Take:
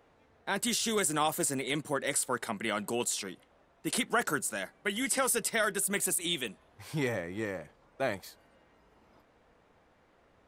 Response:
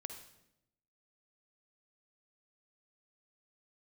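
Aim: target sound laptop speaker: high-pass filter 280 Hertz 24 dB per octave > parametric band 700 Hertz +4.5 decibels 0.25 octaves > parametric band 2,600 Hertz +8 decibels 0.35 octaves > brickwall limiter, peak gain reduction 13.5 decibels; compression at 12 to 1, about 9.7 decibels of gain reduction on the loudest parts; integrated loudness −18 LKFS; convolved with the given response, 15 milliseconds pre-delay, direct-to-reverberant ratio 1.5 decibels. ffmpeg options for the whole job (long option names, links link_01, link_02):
-filter_complex "[0:a]acompressor=threshold=-34dB:ratio=12,asplit=2[link_01][link_02];[1:a]atrim=start_sample=2205,adelay=15[link_03];[link_02][link_03]afir=irnorm=-1:irlink=0,volume=1.5dB[link_04];[link_01][link_04]amix=inputs=2:normalize=0,highpass=frequency=280:width=0.5412,highpass=frequency=280:width=1.3066,equalizer=frequency=700:width_type=o:width=0.25:gain=4.5,equalizer=frequency=2600:width_type=o:width=0.35:gain=8,volume=24dB,alimiter=limit=-8.5dB:level=0:latency=1"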